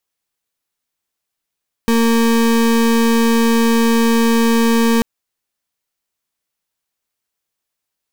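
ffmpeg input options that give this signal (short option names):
-f lavfi -i "aevalsrc='0.224*(2*lt(mod(230*t,1),0.33)-1)':d=3.14:s=44100"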